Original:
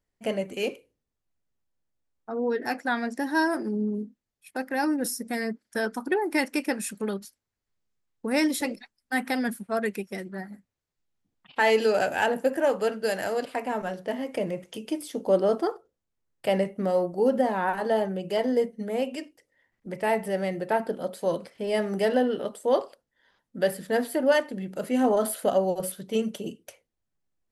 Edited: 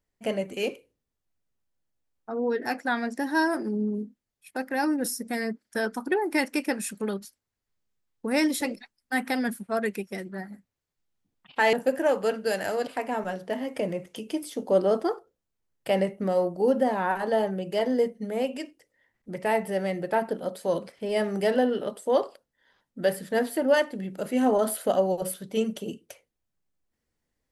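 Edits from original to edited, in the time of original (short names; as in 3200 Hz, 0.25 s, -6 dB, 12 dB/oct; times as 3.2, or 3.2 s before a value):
11.73–12.31 cut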